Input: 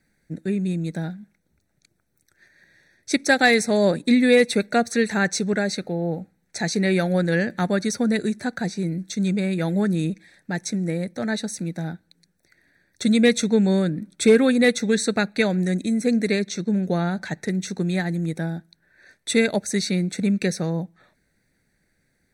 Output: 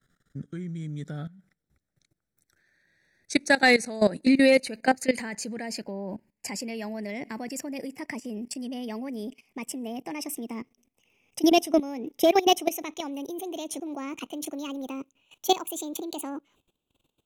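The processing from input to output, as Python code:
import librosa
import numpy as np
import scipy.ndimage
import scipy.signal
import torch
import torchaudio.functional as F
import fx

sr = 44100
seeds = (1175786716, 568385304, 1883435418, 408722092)

y = fx.speed_glide(x, sr, from_pct=85, to_pct=174)
y = fx.level_steps(y, sr, step_db=17)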